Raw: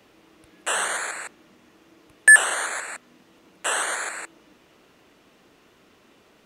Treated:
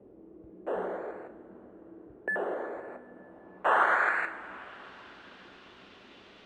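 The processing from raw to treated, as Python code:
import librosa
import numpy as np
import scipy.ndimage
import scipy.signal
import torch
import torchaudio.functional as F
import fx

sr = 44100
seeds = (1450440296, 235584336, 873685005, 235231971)

y = fx.filter_sweep_lowpass(x, sr, from_hz=440.0, to_hz=3700.0, start_s=2.83, end_s=4.93, q=1.7)
y = fx.rev_double_slope(y, sr, seeds[0], early_s=0.36, late_s=5.0, knee_db=-19, drr_db=6.5)
y = y * 10.0 ** (1.0 / 20.0)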